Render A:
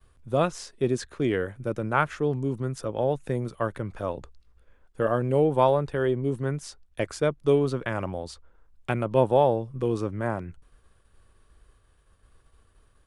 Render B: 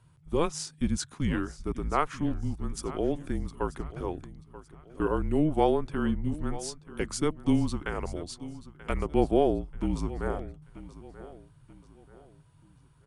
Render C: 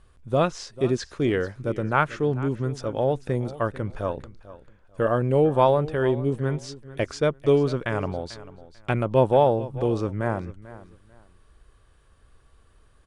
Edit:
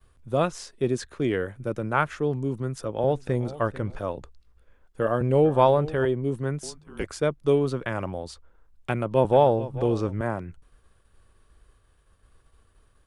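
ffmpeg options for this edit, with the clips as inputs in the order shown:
-filter_complex "[2:a]asplit=3[s0][s1][s2];[0:a]asplit=5[s3][s4][s5][s6][s7];[s3]atrim=end=3.042[s8];[s0]atrim=start=3.038:end=3.992[s9];[s4]atrim=start=3.988:end=5.212[s10];[s1]atrim=start=5.208:end=6.052[s11];[s5]atrim=start=6.048:end=6.632[s12];[1:a]atrim=start=6.628:end=7.042[s13];[s6]atrim=start=7.038:end=9.252[s14];[s2]atrim=start=9.248:end=10.212[s15];[s7]atrim=start=10.208[s16];[s8][s9]acrossfade=d=0.004:c1=hsin:c2=hsin[s17];[s17][s10]acrossfade=d=0.004:c1=hsin:c2=hsin[s18];[s18][s11]acrossfade=d=0.004:c1=hsin:c2=hsin[s19];[s19][s12]acrossfade=d=0.004:c1=hsin:c2=hsin[s20];[s20][s13]acrossfade=d=0.004:c1=hsin:c2=hsin[s21];[s21][s14]acrossfade=d=0.004:c1=hsin:c2=hsin[s22];[s22][s15]acrossfade=d=0.004:c1=hsin:c2=hsin[s23];[s23][s16]acrossfade=d=0.004:c1=hsin:c2=hsin"

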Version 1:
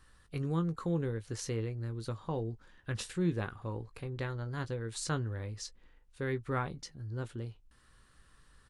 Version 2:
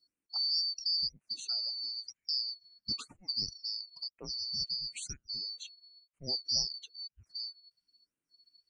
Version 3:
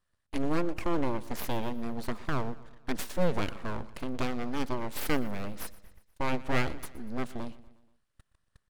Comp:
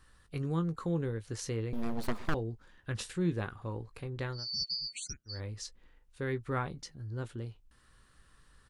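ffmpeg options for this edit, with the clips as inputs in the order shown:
-filter_complex "[0:a]asplit=3[s0][s1][s2];[s0]atrim=end=1.732[s3];[2:a]atrim=start=1.728:end=2.342[s4];[s1]atrim=start=2.338:end=4.48[s5];[1:a]atrim=start=4.32:end=5.41[s6];[s2]atrim=start=5.25[s7];[s3][s4]acrossfade=d=0.004:c1=hsin:c2=hsin[s8];[s8][s5]acrossfade=d=0.004:c1=hsin:c2=hsin[s9];[s9][s6]acrossfade=d=0.16:c1=tri:c2=tri[s10];[s10][s7]acrossfade=d=0.16:c1=tri:c2=tri"

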